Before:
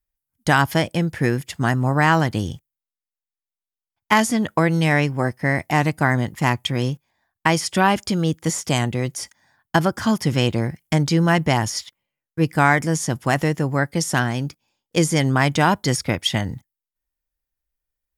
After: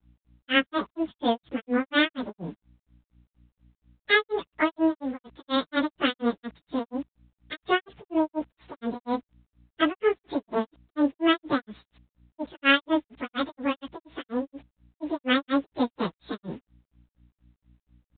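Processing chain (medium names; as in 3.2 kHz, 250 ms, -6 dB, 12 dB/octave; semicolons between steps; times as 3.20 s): frequency-domain pitch shifter +11.5 st; bit crusher 8-bit; hum 60 Hz, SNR 32 dB; granulator 191 ms, grains 4.2 per s, pitch spread up and down by 0 st; µ-law 64 kbps 8 kHz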